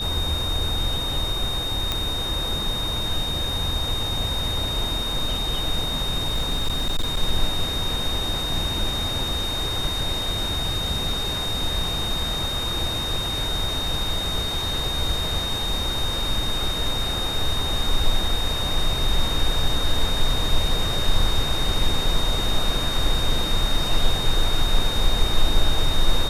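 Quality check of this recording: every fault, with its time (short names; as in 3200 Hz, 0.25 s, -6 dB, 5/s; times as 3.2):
tone 3700 Hz -26 dBFS
1.92 pop -8 dBFS
6.25–7.22 clipped -18 dBFS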